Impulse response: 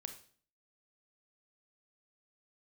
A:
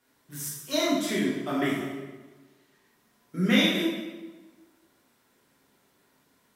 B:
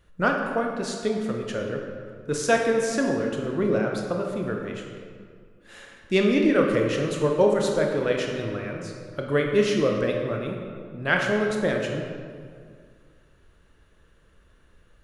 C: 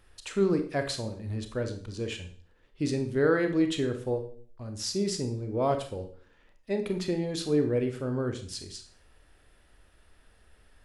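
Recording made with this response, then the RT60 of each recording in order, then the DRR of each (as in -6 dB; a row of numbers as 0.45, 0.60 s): C; 1.3, 2.1, 0.45 s; -7.0, 1.0, 6.5 dB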